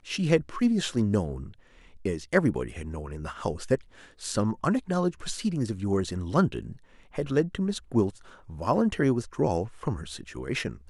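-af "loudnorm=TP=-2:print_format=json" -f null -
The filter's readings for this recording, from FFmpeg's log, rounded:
"input_i" : "-28.4",
"input_tp" : "-7.2",
"input_lra" : "1.6",
"input_thresh" : "-38.9",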